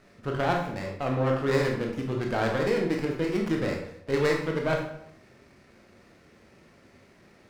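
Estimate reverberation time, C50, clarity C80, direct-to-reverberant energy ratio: 0.75 s, 5.0 dB, 8.0 dB, 0.5 dB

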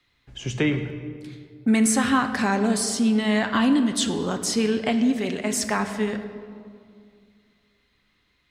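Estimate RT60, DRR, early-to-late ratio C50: 2.2 s, 7.0 dB, 9.5 dB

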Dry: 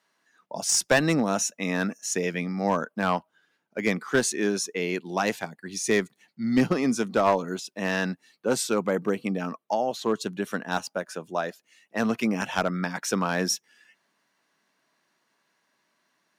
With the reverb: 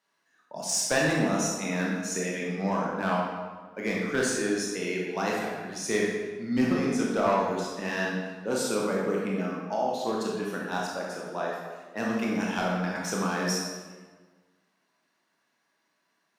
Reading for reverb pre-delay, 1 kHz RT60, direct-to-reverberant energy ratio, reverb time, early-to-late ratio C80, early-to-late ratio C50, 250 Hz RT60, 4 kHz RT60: 21 ms, 1.4 s, -3.5 dB, 1.4 s, 2.5 dB, -0.5 dB, 1.5 s, 1.0 s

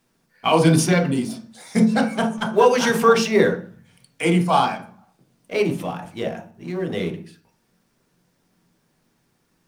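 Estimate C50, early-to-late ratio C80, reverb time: 10.5 dB, 15.0 dB, 0.45 s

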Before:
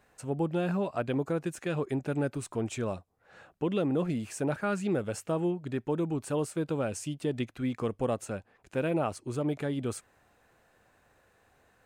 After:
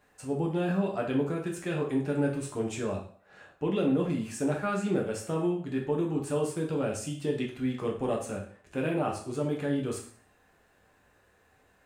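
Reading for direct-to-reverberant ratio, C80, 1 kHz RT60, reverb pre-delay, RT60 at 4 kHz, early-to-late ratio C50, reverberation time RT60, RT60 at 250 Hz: -1.0 dB, 11.5 dB, 0.50 s, 4 ms, 0.45 s, 7.0 dB, 0.50 s, 0.50 s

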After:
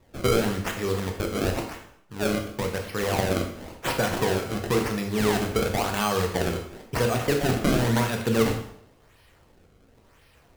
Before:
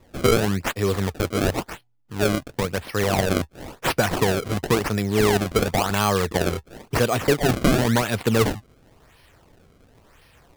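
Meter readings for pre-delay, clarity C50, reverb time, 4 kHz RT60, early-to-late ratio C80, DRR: 6 ms, 7.0 dB, 0.70 s, 0.65 s, 9.5 dB, 2.5 dB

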